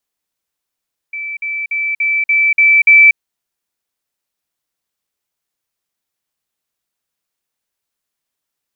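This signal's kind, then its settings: level ladder 2320 Hz -21 dBFS, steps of 3 dB, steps 7, 0.24 s 0.05 s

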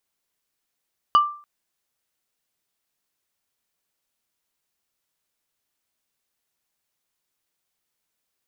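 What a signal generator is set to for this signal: wood hit plate, length 0.29 s, lowest mode 1180 Hz, decay 0.42 s, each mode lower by 12 dB, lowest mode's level -9 dB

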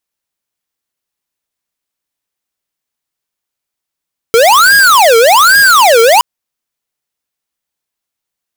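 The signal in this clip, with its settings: siren wail 451–1640 Hz 1.2/s square -5.5 dBFS 1.87 s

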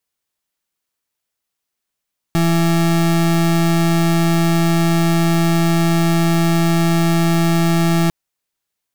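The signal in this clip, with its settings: pulse 167 Hz, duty 33% -14.5 dBFS 5.75 s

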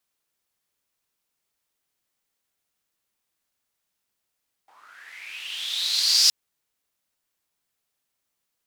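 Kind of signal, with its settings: swept filtered noise white, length 1.62 s bandpass, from 800 Hz, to 5100 Hz, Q 7.1, linear, gain ramp +33 dB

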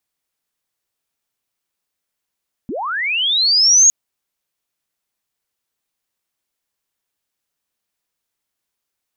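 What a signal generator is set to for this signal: chirp linear 190 Hz -> 6700 Hz -22 dBFS -> -6 dBFS 1.21 s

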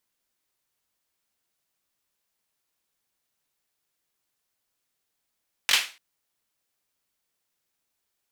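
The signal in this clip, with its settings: hand clap length 0.29 s, bursts 3, apart 21 ms, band 2600 Hz, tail 0.33 s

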